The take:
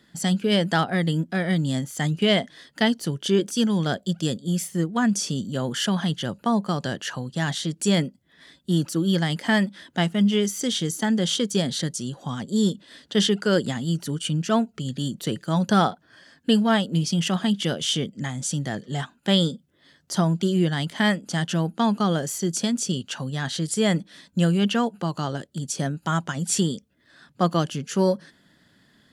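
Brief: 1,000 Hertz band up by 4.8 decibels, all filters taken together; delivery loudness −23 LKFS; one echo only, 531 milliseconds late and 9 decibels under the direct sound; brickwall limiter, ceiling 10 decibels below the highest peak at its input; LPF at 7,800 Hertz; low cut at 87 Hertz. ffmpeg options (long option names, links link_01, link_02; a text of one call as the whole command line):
ffmpeg -i in.wav -af "highpass=87,lowpass=7800,equalizer=frequency=1000:width_type=o:gain=6.5,alimiter=limit=-13dB:level=0:latency=1,aecho=1:1:531:0.355,volume=2dB" out.wav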